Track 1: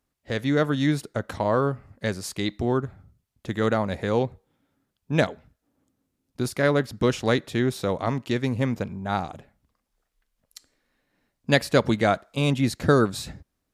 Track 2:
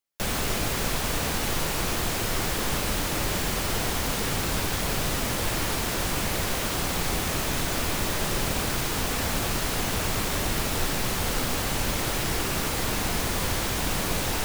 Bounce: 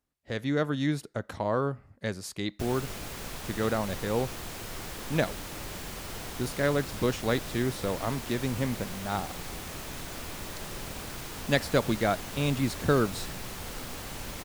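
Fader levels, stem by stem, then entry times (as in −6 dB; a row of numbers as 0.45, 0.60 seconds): −5.5, −12.0 decibels; 0.00, 2.40 seconds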